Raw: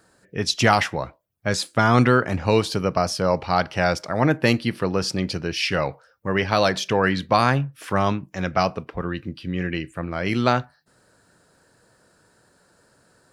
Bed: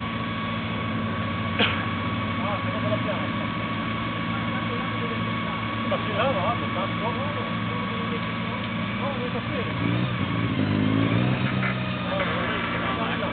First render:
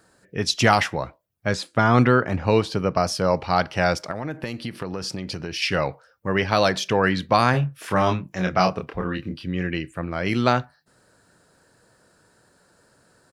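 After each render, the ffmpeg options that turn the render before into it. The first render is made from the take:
ffmpeg -i in.wav -filter_complex "[0:a]asettb=1/sr,asplit=3[link_01][link_02][link_03];[link_01]atrim=end=1.514[link_04];[link_02]atrim=start=1.51:end=2.96,asetpts=PTS-STARTPTS,afade=type=in:duration=0.004:curve=qsin,afade=type=out:start_time=1.446:duration=0.004:curve=qsin,lowpass=frequency=3200:poles=1[link_05];[link_03]atrim=start=2.956[link_06];[link_04][link_05]acrossfade=duration=0.004:curve1=hsin:curve2=qsin[link_07];[link_07][link_06]acrossfade=duration=0.004:curve1=qsin:curve2=hsin,asettb=1/sr,asplit=3[link_08][link_09][link_10];[link_08]atrim=end=4.114[link_11];[link_09]atrim=start=4.11:end=5.62,asetpts=PTS-STARTPTS,afade=type=in:duration=0.004:curve=qsin,afade=type=out:start_time=1.506:duration=0.004:curve=qsin,acompressor=threshold=-25dB:ratio=8:attack=3.2:release=140:knee=1:detection=peak[link_12];[link_10]atrim=start=5.616[link_13];[link_11][link_12]acrossfade=duration=0.004:curve1=hsin:curve2=qsin[link_14];[link_14][link_13]acrossfade=duration=0.004:curve1=qsin:curve2=hsin,asplit=3[link_15][link_16][link_17];[link_15]afade=type=out:start_time=7.53:duration=0.02[link_18];[link_16]asplit=2[link_19][link_20];[link_20]adelay=27,volume=-4dB[link_21];[link_19][link_21]amix=inputs=2:normalize=0,afade=type=in:start_time=7.53:duration=0.02,afade=type=out:start_time=9.43:duration=0.02[link_22];[link_17]afade=type=in:start_time=9.43:duration=0.02[link_23];[link_18][link_22][link_23]amix=inputs=3:normalize=0" out.wav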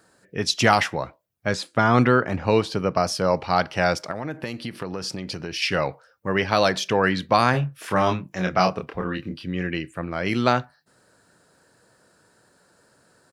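ffmpeg -i in.wav -af "lowshelf=frequency=67:gain=-10" out.wav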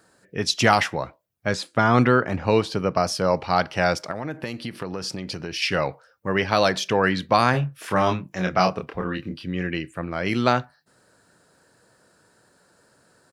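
ffmpeg -i in.wav -af anull out.wav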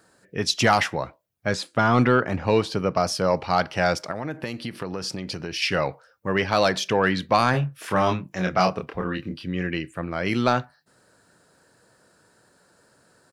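ffmpeg -i in.wav -af "asoftclip=type=tanh:threshold=-6dB" out.wav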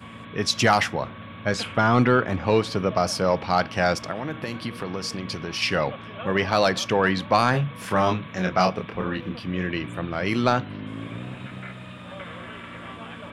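ffmpeg -i in.wav -i bed.wav -filter_complex "[1:a]volume=-12.5dB[link_01];[0:a][link_01]amix=inputs=2:normalize=0" out.wav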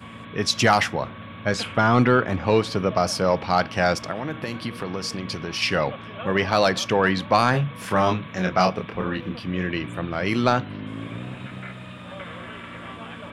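ffmpeg -i in.wav -af "volume=1dB" out.wav

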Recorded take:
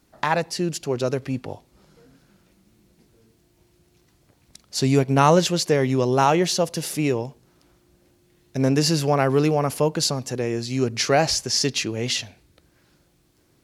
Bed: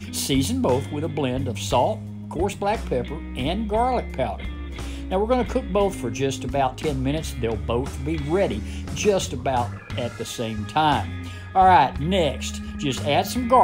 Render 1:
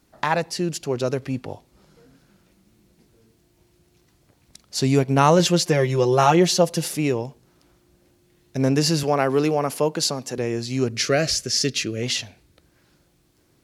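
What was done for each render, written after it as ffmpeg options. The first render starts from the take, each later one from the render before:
ffmpeg -i in.wav -filter_complex "[0:a]asettb=1/sr,asplit=3[link_01][link_02][link_03];[link_01]atrim=end=5.394[link_04];[link_02]atrim=start=5.39:end=6.88,asetpts=PTS-STARTPTS,afade=type=in:duration=0.004:curve=qsin,afade=type=out:start_time=1.486:duration=0.004:curve=qsin,aecho=1:1:5.7:0.72,atrim=end_sample=65709[link_05];[link_03]atrim=start=6.876[link_06];[link_04][link_05]acrossfade=duration=0.004:curve1=hsin:curve2=qsin[link_07];[link_07][link_06]acrossfade=duration=0.004:curve1=qsin:curve2=hsin,asettb=1/sr,asplit=3[link_08][link_09][link_10];[link_08]atrim=end=9.034[link_11];[link_09]atrim=start=9.03:end=10.38,asetpts=PTS-STARTPTS,afade=type=in:duration=0.004:curve=qsin,afade=type=out:start_time=1.346:duration=0.004:curve=qsin,highpass=180[link_12];[link_10]atrim=start=10.376[link_13];[link_11][link_12]acrossfade=duration=0.004:curve1=hsin:curve2=qsin[link_14];[link_14][link_13]acrossfade=duration=0.004:curve1=qsin:curve2=hsin,asettb=1/sr,asplit=3[link_15][link_16][link_17];[link_15]atrim=end=10.924[link_18];[link_16]atrim=start=10.92:end=12.03,asetpts=PTS-STARTPTS,afade=type=in:duration=0.004:curve=qsin,afade=type=out:start_time=1.106:duration=0.004:curve=qsin,asuperstop=centerf=890:order=4:qfactor=1.6[link_19];[link_17]atrim=start=12.026[link_20];[link_18][link_19]acrossfade=duration=0.004:curve1=hsin:curve2=qsin[link_21];[link_21][link_20]acrossfade=duration=0.004:curve1=qsin:curve2=hsin" out.wav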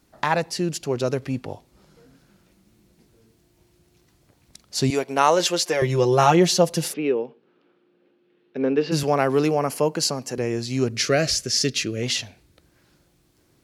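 ffmpeg -i in.wav -filter_complex "[0:a]asettb=1/sr,asplit=3[link_01][link_02][link_03];[link_01]atrim=end=4.904[link_04];[link_02]atrim=start=4.9:end=5.82,asetpts=PTS-STARTPTS,afade=type=in:duration=0.004:curve=qsin,afade=type=out:start_time=0.916:duration=0.004:curve=qsin,highpass=430[link_05];[link_03]atrim=start=5.816[link_06];[link_04][link_05]acrossfade=duration=0.004:curve1=hsin:curve2=qsin[link_07];[link_07][link_06]acrossfade=duration=0.004:curve1=qsin:curve2=hsin,asplit=3[link_08][link_09][link_10];[link_08]afade=type=out:start_time=6.92:duration=0.02[link_11];[link_09]highpass=frequency=220:width=0.5412,highpass=frequency=220:width=1.3066,equalizer=frequency=300:width_type=q:width=4:gain=-3,equalizer=frequency=450:width_type=q:width=4:gain=6,equalizer=frequency=660:width_type=q:width=4:gain=-8,equalizer=frequency=990:width_type=q:width=4:gain=-6,equalizer=frequency=2000:width_type=q:width=4:gain=-6,lowpass=frequency=3000:width=0.5412,lowpass=frequency=3000:width=1.3066,afade=type=in:start_time=6.92:duration=0.02,afade=type=out:start_time=8.91:duration=0.02[link_12];[link_10]afade=type=in:start_time=8.91:duration=0.02[link_13];[link_11][link_12][link_13]amix=inputs=3:normalize=0,asettb=1/sr,asplit=3[link_14][link_15][link_16];[link_14]atrim=end=9.494[link_17];[link_15]atrim=start=9.49:end=10.51,asetpts=PTS-STARTPTS,afade=type=in:duration=0.004:curve=qsin,afade=type=out:start_time=1.016:duration=0.004:curve=qsin,bandreject=frequency=3600:width=5.8[link_18];[link_16]atrim=start=10.506[link_19];[link_17][link_18]acrossfade=duration=0.004:curve1=hsin:curve2=qsin[link_20];[link_20][link_19]acrossfade=duration=0.004:curve1=qsin:curve2=hsin" out.wav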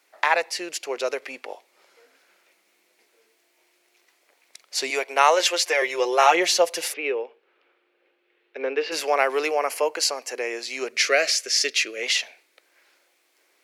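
ffmpeg -i in.wav -af "highpass=frequency=450:width=0.5412,highpass=frequency=450:width=1.3066,equalizer=frequency=2200:width=2:gain=9" out.wav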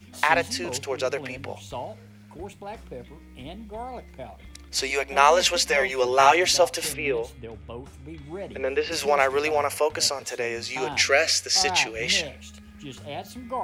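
ffmpeg -i in.wav -i bed.wav -filter_complex "[1:a]volume=-14.5dB[link_01];[0:a][link_01]amix=inputs=2:normalize=0" out.wav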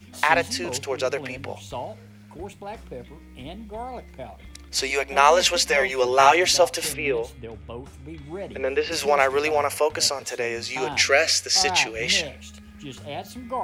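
ffmpeg -i in.wav -af "volume=1.5dB,alimiter=limit=-3dB:level=0:latency=1" out.wav

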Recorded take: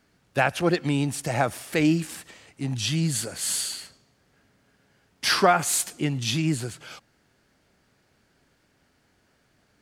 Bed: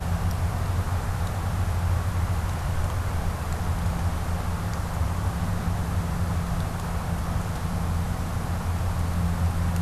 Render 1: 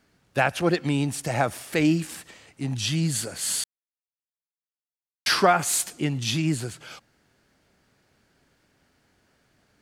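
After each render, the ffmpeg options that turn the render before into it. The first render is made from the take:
ffmpeg -i in.wav -filter_complex "[0:a]asplit=3[link_01][link_02][link_03];[link_01]atrim=end=3.64,asetpts=PTS-STARTPTS,afade=type=out:start_time=3.636:duration=0.004:curve=hsin[link_04];[link_02]atrim=start=3.64:end=5.26,asetpts=PTS-STARTPTS,volume=0[link_05];[link_03]atrim=start=5.26,asetpts=PTS-STARTPTS,afade=type=in:duration=0.004:curve=hsin[link_06];[link_04][link_05][link_06]concat=n=3:v=0:a=1" out.wav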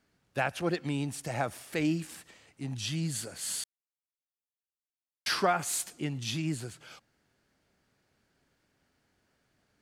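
ffmpeg -i in.wav -af "volume=-8dB" out.wav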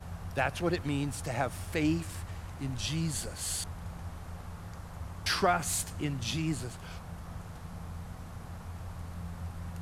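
ffmpeg -i in.wav -i bed.wav -filter_complex "[1:a]volume=-15.5dB[link_01];[0:a][link_01]amix=inputs=2:normalize=0" out.wav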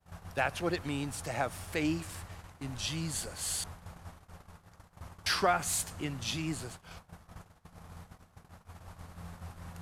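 ffmpeg -i in.wav -af "lowshelf=frequency=260:gain=-6.5,agate=range=-23dB:threshold=-45dB:ratio=16:detection=peak" out.wav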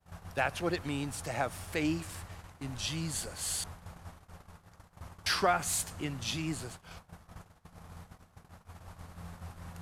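ffmpeg -i in.wav -af anull out.wav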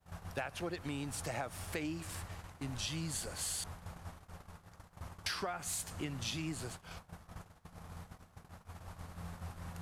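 ffmpeg -i in.wav -af "acompressor=threshold=-35dB:ratio=12" out.wav

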